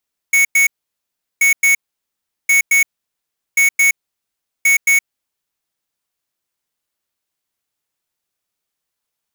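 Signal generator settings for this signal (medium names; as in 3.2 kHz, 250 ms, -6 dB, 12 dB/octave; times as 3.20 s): beep pattern square 2.22 kHz, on 0.12 s, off 0.10 s, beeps 2, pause 0.74 s, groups 5, -11.5 dBFS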